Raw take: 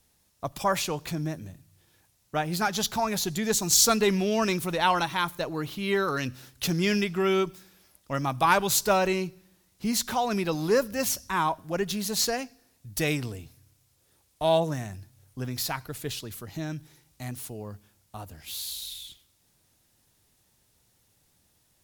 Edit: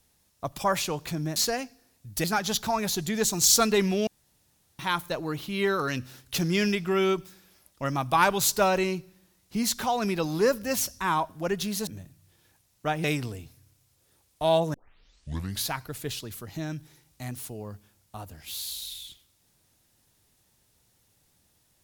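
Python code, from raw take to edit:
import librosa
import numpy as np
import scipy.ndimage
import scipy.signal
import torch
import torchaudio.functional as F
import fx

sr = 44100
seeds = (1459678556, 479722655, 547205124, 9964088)

y = fx.edit(x, sr, fx.swap(start_s=1.36, length_s=1.17, other_s=12.16, other_length_s=0.88),
    fx.room_tone_fill(start_s=4.36, length_s=0.72),
    fx.tape_start(start_s=14.74, length_s=0.97), tone=tone)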